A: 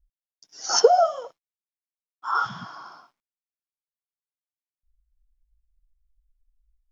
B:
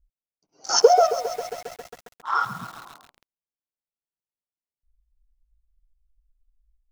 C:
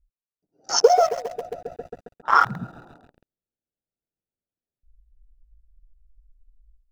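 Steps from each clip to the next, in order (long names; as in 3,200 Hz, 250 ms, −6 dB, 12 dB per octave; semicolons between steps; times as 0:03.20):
adaptive Wiener filter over 25 samples; feedback echo at a low word length 135 ms, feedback 80%, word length 6 bits, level −12 dB; level +1.5 dB
adaptive Wiener filter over 41 samples; automatic gain control gain up to 12 dB; level −1 dB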